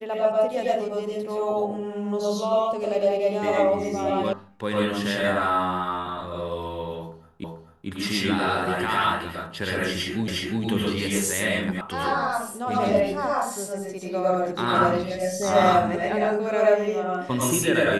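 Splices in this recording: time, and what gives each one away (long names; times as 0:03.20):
0:04.33: cut off before it has died away
0:07.44: the same again, the last 0.44 s
0:10.28: the same again, the last 0.36 s
0:11.81: cut off before it has died away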